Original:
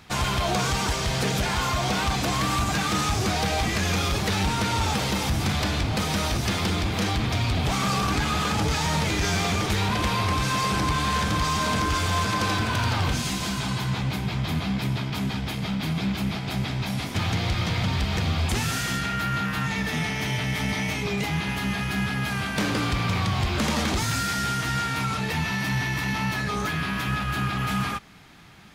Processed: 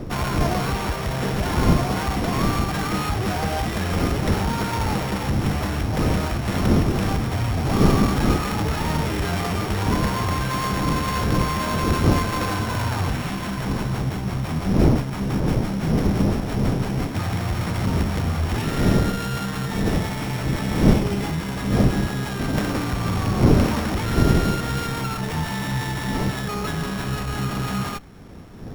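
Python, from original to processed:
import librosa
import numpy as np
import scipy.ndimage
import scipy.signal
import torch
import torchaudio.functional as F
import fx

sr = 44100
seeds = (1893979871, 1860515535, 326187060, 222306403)

y = np.r_[np.sort(x[:len(x) // 8 * 8].reshape(-1, 8), axis=1).ravel(), x[len(x) // 8 * 8:]]
y = fx.dmg_wind(y, sr, seeds[0], corner_hz=250.0, level_db=-26.0)
y = fx.running_max(y, sr, window=9)
y = F.gain(torch.from_numpy(y), 1.5).numpy()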